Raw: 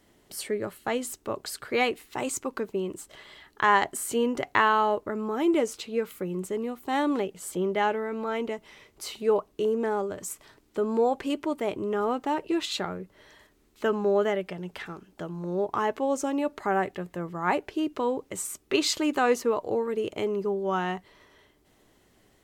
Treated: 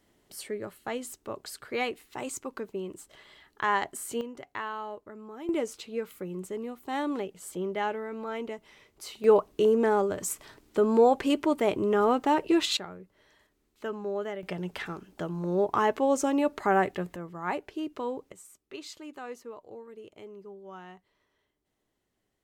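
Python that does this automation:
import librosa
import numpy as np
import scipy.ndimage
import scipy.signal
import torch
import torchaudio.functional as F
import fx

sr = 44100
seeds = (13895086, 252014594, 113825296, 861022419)

y = fx.gain(x, sr, db=fx.steps((0.0, -5.5), (4.21, -14.0), (5.49, -5.0), (9.24, 3.5), (12.77, -9.0), (14.43, 2.0), (17.16, -6.0), (18.32, -17.5)))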